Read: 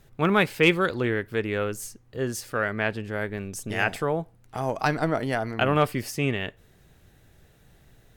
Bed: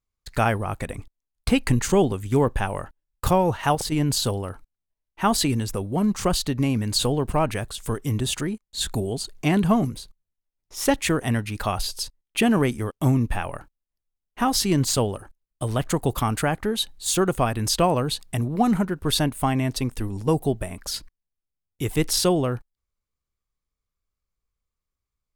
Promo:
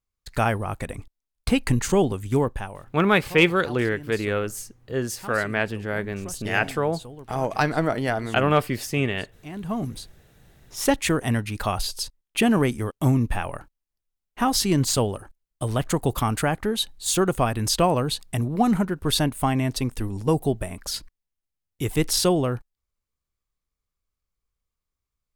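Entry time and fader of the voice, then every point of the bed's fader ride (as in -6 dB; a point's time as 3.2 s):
2.75 s, +2.0 dB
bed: 2.36 s -1 dB
3.09 s -18.5 dB
9.45 s -18.5 dB
9.98 s 0 dB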